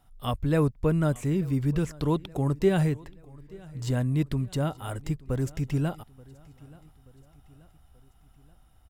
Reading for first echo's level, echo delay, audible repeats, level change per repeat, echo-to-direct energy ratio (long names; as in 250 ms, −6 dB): −23.0 dB, 880 ms, 3, −5.5 dB, −21.5 dB